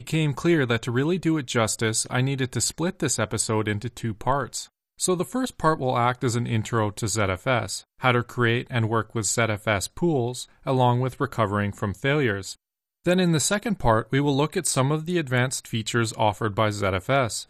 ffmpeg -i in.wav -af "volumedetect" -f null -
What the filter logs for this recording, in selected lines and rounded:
mean_volume: -24.2 dB
max_volume: -5.5 dB